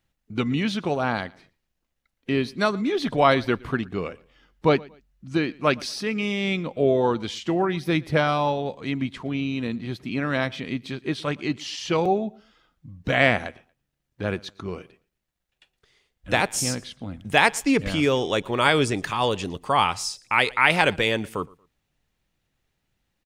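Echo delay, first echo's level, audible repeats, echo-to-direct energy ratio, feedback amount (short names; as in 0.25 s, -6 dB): 0.116 s, -24.0 dB, 2, -23.5 dB, 29%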